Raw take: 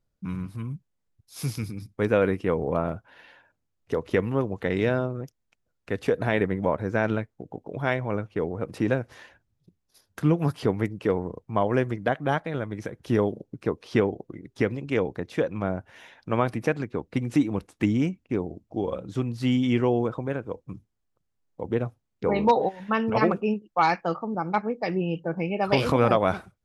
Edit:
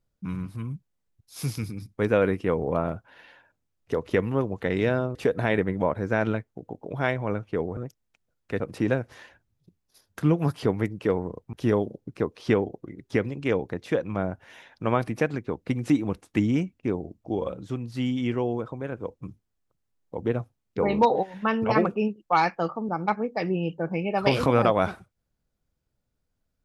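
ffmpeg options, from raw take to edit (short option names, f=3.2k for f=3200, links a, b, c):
-filter_complex "[0:a]asplit=7[a][b][c][d][e][f][g];[a]atrim=end=5.152[h];[b]atrim=start=5.978:end=8.602[i];[c]atrim=start=5.148:end=5.982[j];[d]atrim=start=8.598:end=11.532[k];[e]atrim=start=12.988:end=19.092[l];[f]atrim=start=19.088:end=20.382,asetpts=PTS-STARTPTS,volume=-4dB[m];[g]atrim=start=20.378[n];[h][i]acrossfade=d=0.004:c1=hsin:c2=hsin[o];[o][j]acrossfade=d=0.004:c1=hsin:c2=hsin[p];[p][k]acrossfade=d=0.004:c1=hsin:c2=hsin[q];[q][l]acrossfade=d=0.004:c1=hsin:c2=hsin[r];[r][m]acrossfade=d=0.004:c1=hsin:c2=hsin[s];[s][n]acrossfade=d=0.004:c1=hsin:c2=hsin"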